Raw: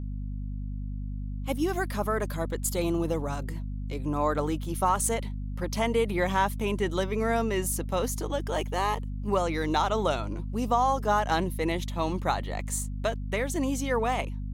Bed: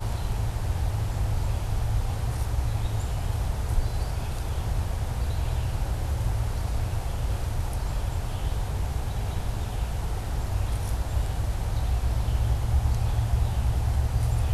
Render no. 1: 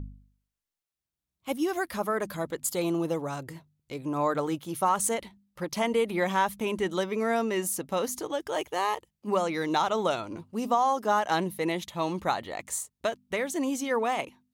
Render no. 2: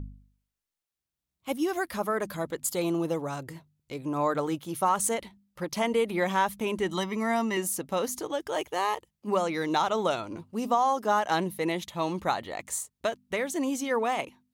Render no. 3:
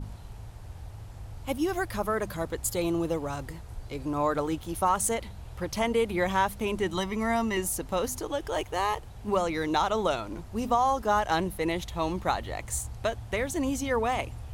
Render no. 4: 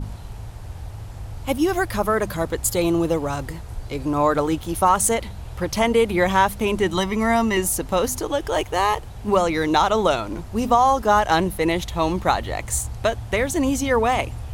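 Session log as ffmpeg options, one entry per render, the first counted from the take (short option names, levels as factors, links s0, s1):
-af "bandreject=f=50:t=h:w=4,bandreject=f=100:t=h:w=4,bandreject=f=150:t=h:w=4,bandreject=f=200:t=h:w=4,bandreject=f=250:t=h:w=4"
-filter_complex "[0:a]asettb=1/sr,asplit=3[s0][s1][s2];[s0]atrim=end=6.884[s3];[s1]atrim=start=6.88:end=7.57,asetpts=PTS-STARTPTS,afade=t=in:d=0.004:c=qsin,afade=t=out:st=0.686:d=0.004:c=qsin,aecho=1:1:1:0.65,atrim=end_sample=30429[s4];[s2]atrim=start=7.566[s5];[s3][s4]acrossfade=d=0.004:c1=hsin:c2=qsin[s6];[s6][s5]acrossfade=d=0.004:c1=qsin:c2=hsin"
-filter_complex "[1:a]volume=0.168[s0];[0:a][s0]amix=inputs=2:normalize=0"
-af "volume=2.51"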